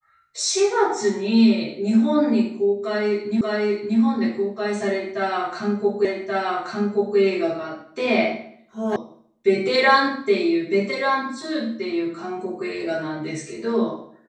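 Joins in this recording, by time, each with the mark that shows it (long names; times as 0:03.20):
0:03.41: the same again, the last 0.58 s
0:06.05: the same again, the last 1.13 s
0:08.96: cut off before it has died away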